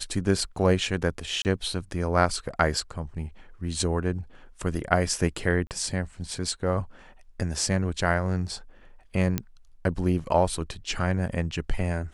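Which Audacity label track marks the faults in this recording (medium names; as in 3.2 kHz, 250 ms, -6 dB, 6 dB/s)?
1.420000	1.450000	dropout 29 ms
5.670000	5.710000	dropout 38 ms
9.380000	9.380000	pop -11 dBFS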